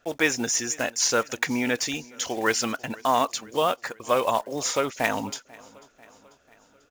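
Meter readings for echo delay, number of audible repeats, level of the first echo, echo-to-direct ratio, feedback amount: 0.492 s, 3, -23.5 dB, -22.0 dB, 58%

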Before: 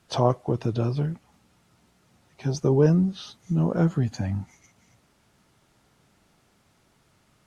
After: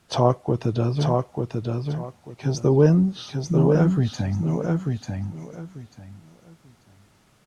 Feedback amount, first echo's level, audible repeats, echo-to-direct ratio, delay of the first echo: 21%, -4.0 dB, 3, -4.0 dB, 0.891 s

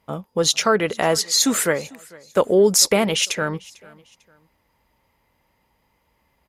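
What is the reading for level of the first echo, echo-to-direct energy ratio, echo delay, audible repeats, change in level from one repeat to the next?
-23.5 dB, -23.0 dB, 0.448 s, 2, -9.5 dB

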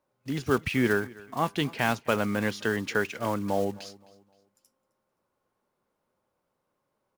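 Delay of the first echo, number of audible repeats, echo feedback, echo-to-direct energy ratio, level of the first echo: 0.261 s, 2, 37%, -21.5 dB, -22.0 dB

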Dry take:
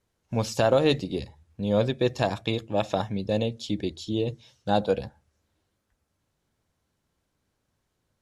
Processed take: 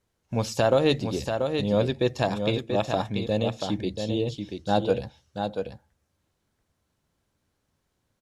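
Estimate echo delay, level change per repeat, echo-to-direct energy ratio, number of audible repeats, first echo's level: 0.685 s, no steady repeat, -6.0 dB, 1, -6.0 dB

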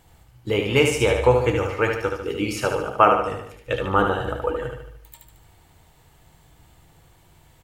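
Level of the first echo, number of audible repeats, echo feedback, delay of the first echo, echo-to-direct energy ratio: -5.0 dB, 5, 50%, 74 ms, -4.0 dB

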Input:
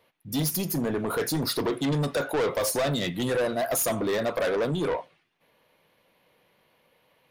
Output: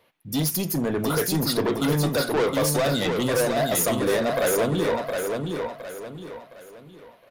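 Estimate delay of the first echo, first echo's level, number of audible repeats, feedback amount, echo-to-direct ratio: 0.714 s, -4.5 dB, 4, 36%, -4.0 dB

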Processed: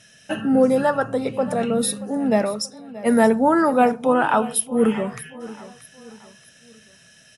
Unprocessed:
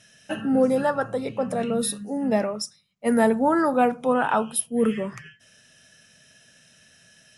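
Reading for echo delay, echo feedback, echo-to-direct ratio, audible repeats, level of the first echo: 0.629 s, 40%, -17.0 dB, 3, -17.5 dB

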